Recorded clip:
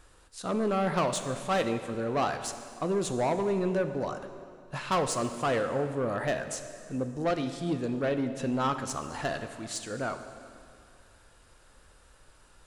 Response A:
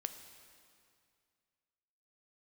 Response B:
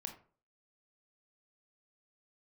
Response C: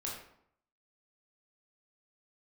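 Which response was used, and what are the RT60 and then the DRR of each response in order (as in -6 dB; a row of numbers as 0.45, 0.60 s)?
A; 2.2, 0.45, 0.70 s; 8.0, 3.5, -4.0 dB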